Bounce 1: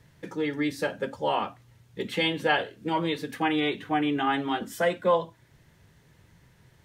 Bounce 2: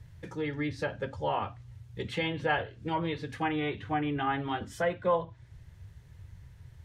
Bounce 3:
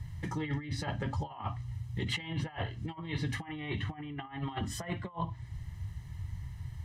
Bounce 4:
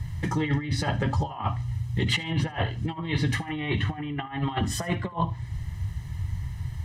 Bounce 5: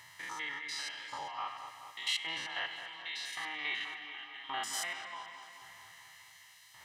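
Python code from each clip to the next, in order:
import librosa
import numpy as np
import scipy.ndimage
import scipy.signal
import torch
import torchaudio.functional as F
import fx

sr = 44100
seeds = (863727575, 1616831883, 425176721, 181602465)

y1 = fx.env_lowpass_down(x, sr, base_hz=2400.0, full_db=-22.0)
y1 = fx.low_shelf_res(y1, sr, hz=140.0, db=14.0, q=1.5)
y1 = F.gain(torch.from_numpy(y1), -3.5).numpy()
y2 = y1 + 0.72 * np.pad(y1, (int(1.0 * sr / 1000.0), 0))[:len(y1)]
y2 = fx.over_compress(y2, sr, threshold_db=-35.0, ratio=-0.5)
y3 = fx.echo_feedback(y2, sr, ms=75, feedback_pct=31, wet_db=-21.5)
y3 = F.gain(torch.from_numpy(y3), 9.0).numpy()
y4 = fx.spec_steps(y3, sr, hold_ms=100)
y4 = fx.filter_lfo_highpass(y4, sr, shape='saw_up', hz=0.89, low_hz=900.0, high_hz=3400.0, q=0.75)
y4 = fx.echo_wet_lowpass(y4, sr, ms=214, feedback_pct=64, hz=3600.0, wet_db=-9.0)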